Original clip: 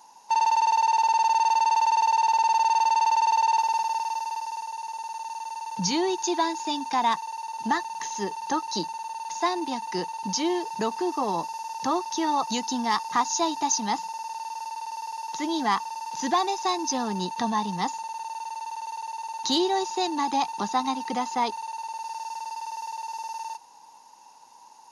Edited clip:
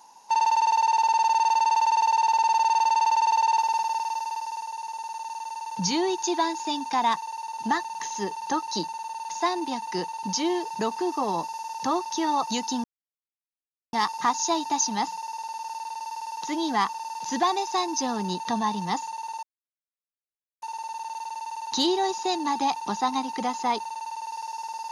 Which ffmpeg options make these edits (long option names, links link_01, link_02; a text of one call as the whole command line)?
ffmpeg -i in.wav -filter_complex "[0:a]asplit=3[link_01][link_02][link_03];[link_01]atrim=end=12.84,asetpts=PTS-STARTPTS,afade=type=out:start_time=12.836:duration=0.004:curve=hsin,apad=pad_dur=1.09[link_04];[link_02]atrim=start=12.84:end=18.34,asetpts=PTS-STARTPTS,afade=type=in:duration=0.004:curve=hsin,afade=type=out:start_time=5.496:duration=0.004:curve=hsin,apad=pad_dur=1.19[link_05];[link_03]atrim=start=18.34,asetpts=PTS-STARTPTS,afade=type=in:duration=0.004:curve=hsin[link_06];[link_04][link_05][link_06]concat=n=3:v=0:a=1" out.wav